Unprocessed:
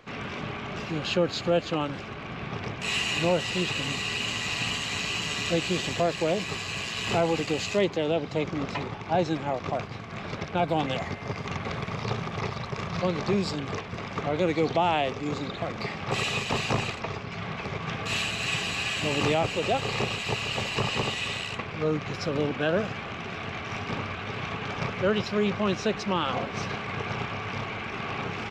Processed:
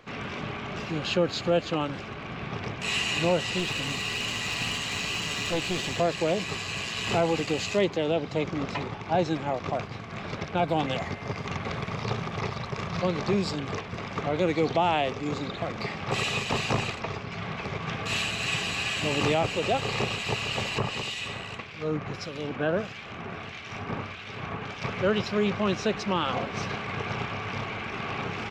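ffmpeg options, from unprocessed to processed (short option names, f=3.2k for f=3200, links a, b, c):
-filter_complex "[0:a]asettb=1/sr,asplit=3[a][b][c];[a]atrim=end=3.594[d];[b]atrim=start=3.59:end=5.98,asetpts=PTS-STARTPTS,afade=t=in:d=0.004:c=qsin,afade=t=out:st=2.386:d=0.004:c=qsin,aeval=exprs='clip(val(0),-1,0.0447)':c=same[e];[c]atrim=start=5.976[f];[d][e]acrossfade=d=0.004:c1=hsin:c2=qsin[g];[g][f]acrossfade=d=0.004:c1=qsin:c2=hsin,asettb=1/sr,asplit=3[h][i][j];[h]atrim=end=20.784[k];[i]atrim=start=20.78:end=24.84,asetpts=PTS-STARTPTS,afade=t=in:d=0.004:c=qsin,afade=t=out:st=4.056:d=0.004:c=qsin,acrossover=split=2000[l][m];[l]aeval=exprs='val(0)*(1-0.7/2+0.7/2*cos(2*PI*1.6*n/s))':c=same[n];[m]aeval=exprs='val(0)*(1-0.7/2-0.7/2*cos(2*PI*1.6*n/s))':c=same[o];[n][o]amix=inputs=2:normalize=0[p];[j]atrim=start=24.836[q];[k][p]acrossfade=d=0.004:c1=hsin:c2=qsin[r];[r][q]acrossfade=d=0.004:c1=qsin:c2=hsin"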